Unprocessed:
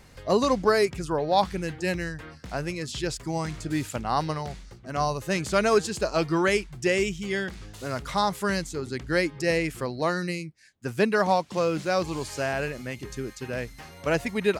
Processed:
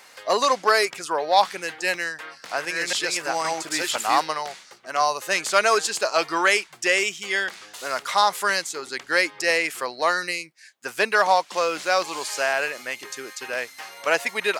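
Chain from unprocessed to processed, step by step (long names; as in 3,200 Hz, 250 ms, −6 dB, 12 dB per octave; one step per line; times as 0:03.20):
0:01.91–0:04.21: delay that plays each chunk backwards 511 ms, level −0.5 dB
soft clipping −10.5 dBFS, distortion −25 dB
high-pass filter 750 Hz 12 dB per octave
level +8.5 dB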